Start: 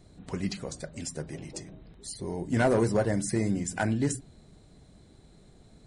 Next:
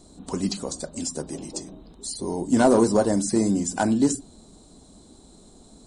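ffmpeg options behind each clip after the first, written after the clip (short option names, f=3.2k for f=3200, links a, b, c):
-filter_complex "[0:a]acrossover=split=5500[a][b];[b]acompressor=threshold=-47dB:ratio=4:attack=1:release=60[c];[a][c]amix=inputs=2:normalize=0,equalizer=f=125:t=o:w=1:g=-10,equalizer=f=250:t=o:w=1:g=8,equalizer=f=1k:t=o:w=1:g=7,equalizer=f=2k:t=o:w=1:g=-11,equalizer=f=4k:t=o:w=1:g=4,equalizer=f=8k:t=o:w=1:g=12,volume=3.5dB"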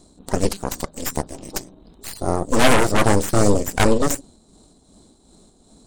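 -af "aeval=exprs='0.473*(cos(1*acos(clip(val(0)/0.473,-1,1)))-cos(1*PI/2))+0.237*(cos(8*acos(clip(val(0)/0.473,-1,1)))-cos(8*PI/2))':c=same,tremolo=f=2.6:d=0.48"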